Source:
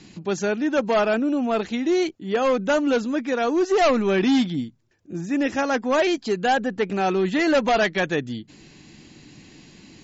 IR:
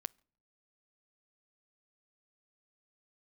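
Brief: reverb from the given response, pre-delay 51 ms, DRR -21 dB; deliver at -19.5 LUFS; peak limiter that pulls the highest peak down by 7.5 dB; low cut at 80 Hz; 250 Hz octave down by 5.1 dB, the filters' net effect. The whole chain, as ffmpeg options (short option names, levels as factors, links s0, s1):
-filter_complex "[0:a]highpass=80,equalizer=f=250:t=o:g=-6.5,alimiter=limit=0.133:level=0:latency=1,asplit=2[s0][s1];[1:a]atrim=start_sample=2205,adelay=51[s2];[s1][s2]afir=irnorm=-1:irlink=0,volume=15.8[s3];[s0][s3]amix=inputs=2:normalize=0,volume=0.2"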